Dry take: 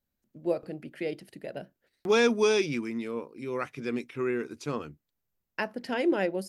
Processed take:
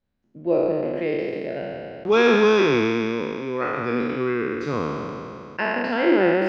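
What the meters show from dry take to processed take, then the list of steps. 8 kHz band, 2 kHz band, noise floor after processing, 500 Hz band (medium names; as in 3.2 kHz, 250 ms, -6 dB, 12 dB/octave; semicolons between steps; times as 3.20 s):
no reading, +9.0 dB, -63 dBFS, +8.0 dB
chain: spectral sustain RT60 2.73 s; distance through air 220 m; trim +4.5 dB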